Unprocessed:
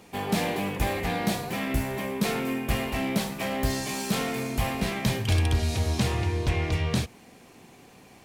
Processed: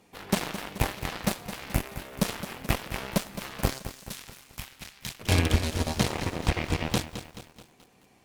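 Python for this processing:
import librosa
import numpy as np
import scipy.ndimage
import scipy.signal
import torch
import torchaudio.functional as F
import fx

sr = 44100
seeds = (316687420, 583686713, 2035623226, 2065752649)

y = fx.cheby_harmonics(x, sr, harmonics=(3, 4, 5, 7), levels_db=(-15, -23, -36, -19), full_scale_db=-11.5)
y = fx.tone_stack(y, sr, knobs='5-5-5', at=(3.78, 5.19), fade=0.02)
y = fx.echo_crushed(y, sr, ms=215, feedback_pct=55, bits=8, wet_db=-11.5)
y = y * 10.0 ** (3.5 / 20.0)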